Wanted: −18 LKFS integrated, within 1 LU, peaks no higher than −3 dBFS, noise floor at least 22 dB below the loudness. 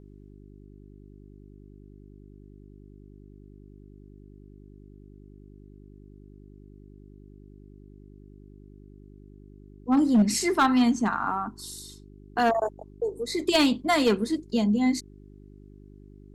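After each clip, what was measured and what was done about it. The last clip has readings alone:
share of clipped samples 0.4%; peaks flattened at −15.0 dBFS; mains hum 50 Hz; hum harmonics up to 400 Hz; level of the hum −47 dBFS; integrated loudness −25.0 LKFS; sample peak −15.0 dBFS; target loudness −18.0 LKFS
→ clipped peaks rebuilt −15 dBFS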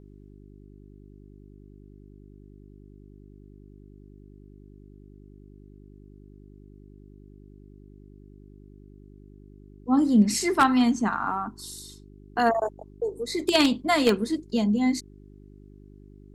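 share of clipped samples 0.0%; mains hum 50 Hz; hum harmonics up to 400 Hz; level of the hum −47 dBFS
→ hum removal 50 Hz, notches 8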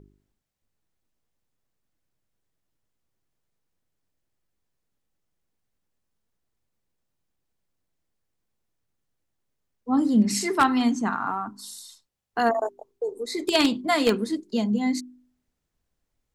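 mains hum none found; integrated loudness −24.5 LKFS; sample peak −5.5 dBFS; target loudness −18.0 LKFS
→ level +6.5 dB
brickwall limiter −3 dBFS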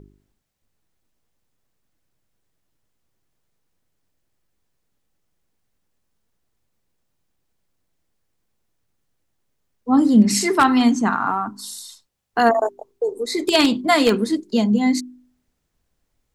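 integrated loudness −18.5 LKFS; sample peak −3.0 dBFS; background noise floor −73 dBFS

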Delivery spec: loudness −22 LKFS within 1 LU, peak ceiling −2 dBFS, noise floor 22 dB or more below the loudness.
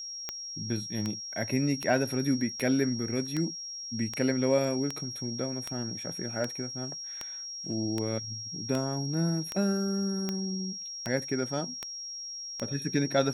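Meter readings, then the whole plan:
number of clicks 17; interfering tone 5,600 Hz; level of the tone −37 dBFS; integrated loudness −31.0 LKFS; sample peak −12.0 dBFS; target loudness −22.0 LKFS
→ click removal
notch filter 5,600 Hz, Q 30
level +9 dB

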